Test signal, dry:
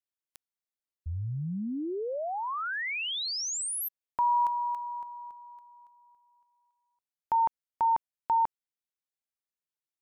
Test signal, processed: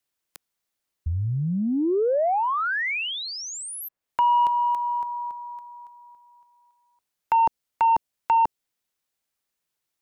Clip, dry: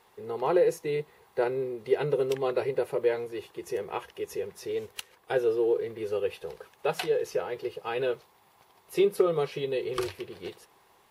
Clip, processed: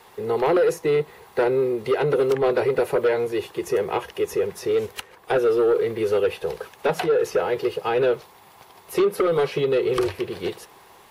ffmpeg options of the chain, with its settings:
ffmpeg -i in.wav -filter_complex "[0:a]acrossover=split=370|810|2100[link_01][link_02][link_03][link_04];[link_01]acompressor=threshold=-36dB:ratio=4[link_05];[link_02]acompressor=threshold=-28dB:ratio=4[link_06];[link_03]acompressor=threshold=-40dB:ratio=4[link_07];[link_04]acompressor=threshold=-49dB:ratio=4[link_08];[link_05][link_06][link_07][link_08]amix=inputs=4:normalize=0,aeval=exprs='0.188*sin(PI/2*2.51*val(0)/0.188)':channel_layout=same" out.wav

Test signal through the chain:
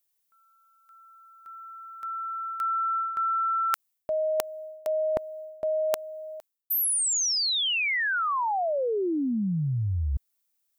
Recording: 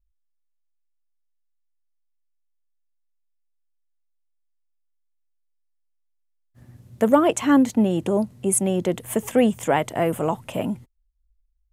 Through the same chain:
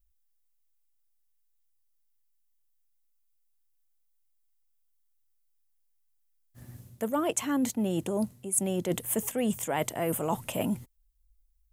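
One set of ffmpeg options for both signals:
ffmpeg -i in.wav -af "aemphasis=mode=production:type=50kf,areverse,acompressor=threshold=-25dB:ratio=12,areverse" out.wav

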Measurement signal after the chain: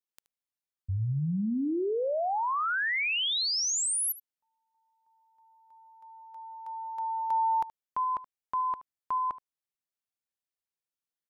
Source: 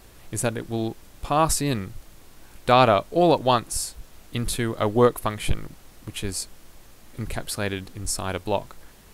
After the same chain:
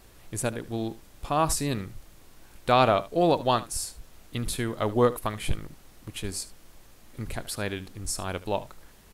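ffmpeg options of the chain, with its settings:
ffmpeg -i in.wav -af "aecho=1:1:75:0.133,volume=-4dB" out.wav

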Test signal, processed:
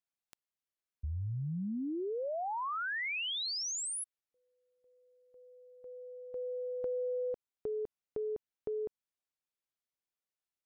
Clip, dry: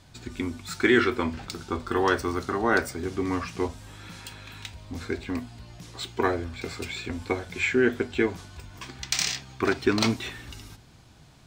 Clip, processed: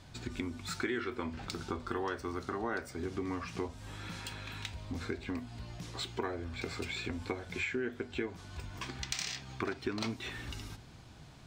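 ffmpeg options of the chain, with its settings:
ffmpeg -i in.wav -af "highshelf=frequency=7400:gain=-6.5,acompressor=threshold=-35dB:ratio=4" out.wav

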